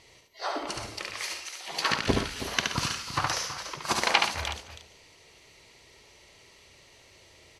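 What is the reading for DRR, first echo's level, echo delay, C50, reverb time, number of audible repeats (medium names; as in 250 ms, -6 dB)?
no reverb, -4.0 dB, 71 ms, no reverb, no reverb, 4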